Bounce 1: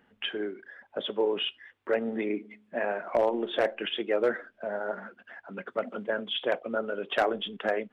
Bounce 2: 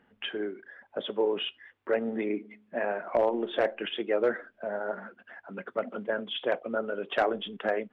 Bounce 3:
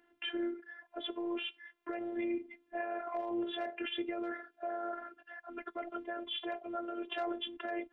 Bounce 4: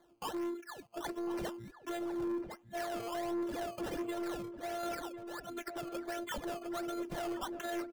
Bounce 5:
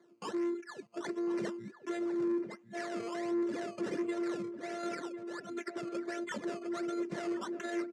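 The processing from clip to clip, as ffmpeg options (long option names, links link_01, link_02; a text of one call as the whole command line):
ffmpeg -i in.wav -af "lowpass=frequency=3100:poles=1" out.wav
ffmpeg -i in.wav -af "alimiter=level_in=2dB:limit=-24dB:level=0:latency=1:release=26,volume=-2dB,highpass=frequency=130:width=0.5412,highpass=frequency=130:width=1.3066,afftfilt=real='hypot(re,im)*cos(PI*b)':imag='0':win_size=512:overlap=0.75,volume=1dB" out.wav
ffmpeg -i in.wav -filter_complex "[0:a]acrossover=split=210|730[link_01][link_02][link_03];[link_03]acrusher=samples=16:mix=1:aa=0.000001:lfo=1:lforange=16:lforate=1.4[link_04];[link_01][link_02][link_04]amix=inputs=3:normalize=0,asoftclip=type=tanh:threshold=-37dB,asplit=2[link_05][link_06];[link_06]adelay=1050,volume=-8dB,highshelf=frequency=4000:gain=-23.6[link_07];[link_05][link_07]amix=inputs=2:normalize=0,volume=3.5dB" out.wav
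ffmpeg -i in.wav -af "highpass=frequency=130:width=0.5412,highpass=frequency=130:width=1.3066,equalizer=frequency=210:width_type=q:width=4:gain=8,equalizer=frequency=390:width_type=q:width=4:gain=7,equalizer=frequency=790:width_type=q:width=4:gain=-9,equalizer=frequency=2000:width_type=q:width=4:gain=5,equalizer=frequency=3200:width_type=q:width=4:gain=-6,lowpass=frequency=8100:width=0.5412,lowpass=frequency=8100:width=1.3066" out.wav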